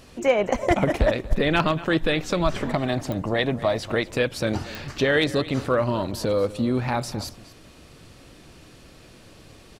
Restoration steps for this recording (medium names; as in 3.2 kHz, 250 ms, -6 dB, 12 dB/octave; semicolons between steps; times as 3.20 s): clip repair -9.5 dBFS; de-click; inverse comb 236 ms -17.5 dB